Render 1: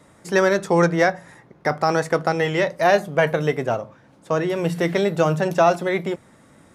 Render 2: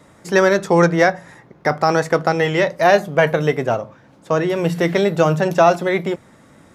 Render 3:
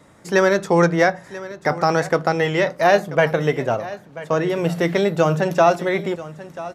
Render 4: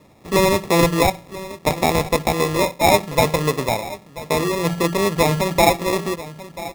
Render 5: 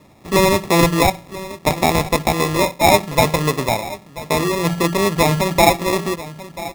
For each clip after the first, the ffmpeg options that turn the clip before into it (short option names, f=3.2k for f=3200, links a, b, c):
-af "equalizer=f=9.2k:t=o:w=0.29:g=-6,volume=3.5dB"
-af "aecho=1:1:987:0.15,volume=-2dB"
-af "acrusher=samples=29:mix=1:aa=0.000001"
-af "equalizer=f=480:t=o:w=0.32:g=-4.5,volume=2.5dB"